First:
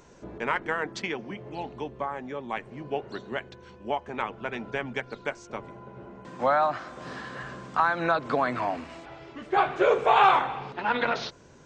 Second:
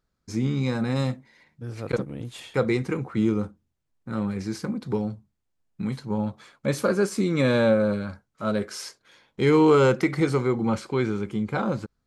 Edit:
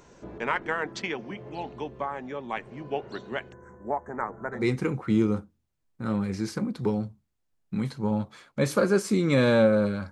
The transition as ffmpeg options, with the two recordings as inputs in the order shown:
ffmpeg -i cue0.wav -i cue1.wav -filter_complex "[0:a]asettb=1/sr,asplit=3[link_01][link_02][link_03];[link_01]atrim=end=3.524[link_04];[link_02]atrim=start=3.52:end=4.68,asetpts=PTS-STARTPTS,afade=type=in:duration=0.004:curve=qsin,afade=type=out:start_time=1.156:duration=0.004:curve=qsin,asuperstop=centerf=3600:order=12:qfactor=0.79[link_05];[link_03]atrim=start=4.676[link_06];[link_04][link_05]acrossfade=duration=0.004:curve1=hsin:curve2=qsin[link_07];[link_07][link_06]acrossfade=duration=0.004:curve1=qsin:curve2=hsin,apad=whole_dur=10.11,atrim=end=10.11,atrim=end=4.68,asetpts=PTS-STARTPTS[link_08];[1:a]atrim=start=2.59:end=8.18,asetpts=PTS-STARTPTS[link_09];[link_08][link_09]acrossfade=duration=0.16:curve1=tri:curve2=tri" out.wav

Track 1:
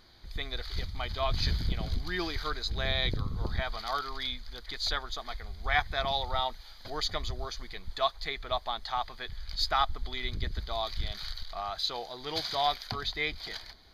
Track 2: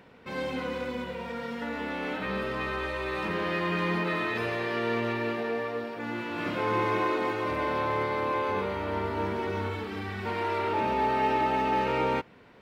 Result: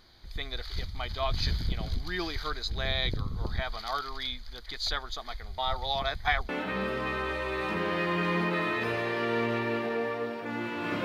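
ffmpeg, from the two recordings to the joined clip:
ffmpeg -i cue0.wav -i cue1.wav -filter_complex "[0:a]apad=whole_dur=11.04,atrim=end=11.04,asplit=2[link_01][link_02];[link_01]atrim=end=5.582[link_03];[link_02]atrim=start=5.578:end=6.492,asetpts=PTS-STARTPTS,areverse[link_04];[1:a]atrim=start=2.028:end=6.58[link_05];[link_03][link_04]acrossfade=duration=0.004:curve1=hsin:curve2=hsin[link_06];[link_06][link_05]acrossfade=duration=0.004:curve1=hsin:curve2=hsin" out.wav

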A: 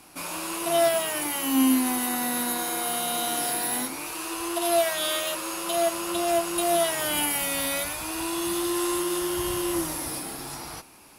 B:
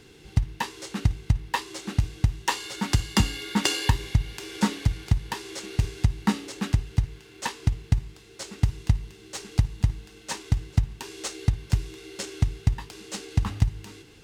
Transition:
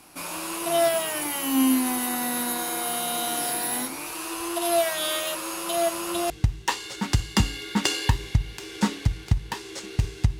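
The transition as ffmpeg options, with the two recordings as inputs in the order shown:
ffmpeg -i cue0.wav -i cue1.wav -filter_complex "[0:a]apad=whole_dur=10.39,atrim=end=10.39,atrim=end=6.302[link_01];[1:a]atrim=start=2.098:end=6.19[link_02];[link_01][link_02]acrossfade=duration=0.004:curve1=hsin:curve2=hsin" out.wav

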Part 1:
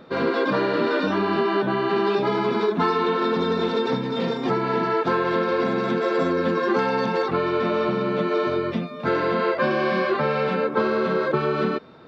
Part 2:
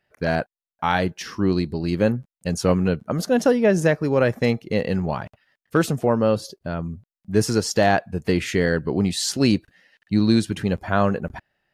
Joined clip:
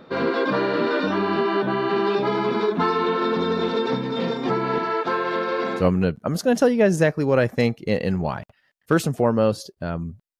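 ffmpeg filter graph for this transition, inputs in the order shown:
ffmpeg -i cue0.wav -i cue1.wav -filter_complex "[0:a]asettb=1/sr,asplit=3[link_01][link_02][link_03];[link_01]atrim=end=4.784[link_04];[link_02]atrim=start=4.78:end=5.84,asetpts=PTS-STARTPTS,afade=type=in:duration=0.004:curve=qsin,afade=type=out:start_time=1.056:duration=0.004:curve=qsin,highpass=frequency=400:poles=1[link_05];[link_03]atrim=start=5.836[link_06];[link_04][link_05]acrossfade=duration=0.004:curve1=hsin:curve2=qsin[link_07];[link_07][link_06]acrossfade=duration=0.004:curve1=qsin:curve2=hsin,apad=whole_dur=10.39,atrim=end=10.39,atrim=end=5.84,asetpts=PTS-STARTPTS[link_08];[1:a]atrim=start=2.6:end=7.23,asetpts=PTS-STARTPTS[link_09];[link_08][link_09]acrossfade=duration=0.08:curve1=tri:curve2=tri" out.wav

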